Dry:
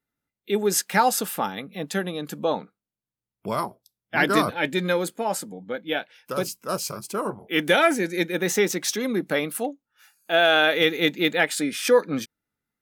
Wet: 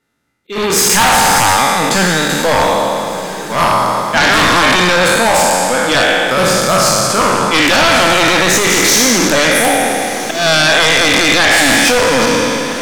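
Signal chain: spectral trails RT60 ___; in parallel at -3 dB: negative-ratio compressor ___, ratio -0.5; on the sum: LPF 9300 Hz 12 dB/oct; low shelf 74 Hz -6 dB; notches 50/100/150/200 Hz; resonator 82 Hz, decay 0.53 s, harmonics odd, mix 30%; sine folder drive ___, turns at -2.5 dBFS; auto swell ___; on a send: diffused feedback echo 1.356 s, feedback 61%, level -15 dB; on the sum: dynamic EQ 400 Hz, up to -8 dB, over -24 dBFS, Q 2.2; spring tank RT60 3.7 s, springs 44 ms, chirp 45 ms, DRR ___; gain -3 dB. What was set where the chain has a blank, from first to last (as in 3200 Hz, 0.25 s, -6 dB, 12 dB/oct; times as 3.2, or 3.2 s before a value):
2.20 s, -20 dBFS, 12 dB, 0.172 s, 15.5 dB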